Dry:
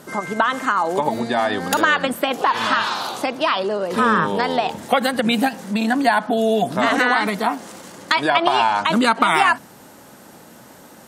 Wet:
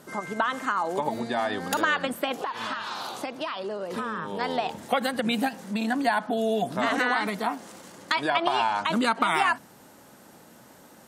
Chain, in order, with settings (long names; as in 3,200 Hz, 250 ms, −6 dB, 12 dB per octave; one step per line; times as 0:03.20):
0:02.34–0:04.41: downward compressor, threshold −21 dBFS, peak gain reduction 8.5 dB
level −7.5 dB